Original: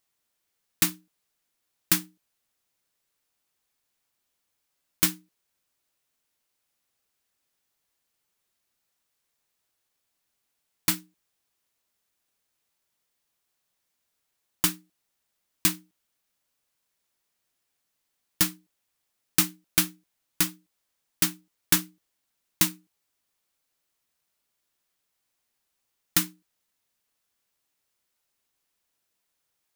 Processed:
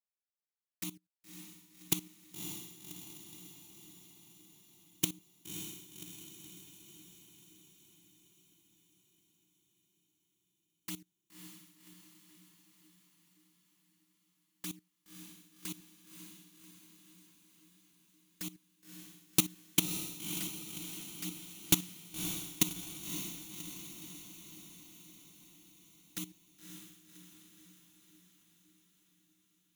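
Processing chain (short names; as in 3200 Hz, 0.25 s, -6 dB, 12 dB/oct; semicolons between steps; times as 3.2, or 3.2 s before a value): level quantiser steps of 18 dB; envelope flanger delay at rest 4.8 ms, full sweep at -36 dBFS; gate -49 dBFS, range -10 dB; diffused feedback echo 0.567 s, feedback 61%, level -7 dB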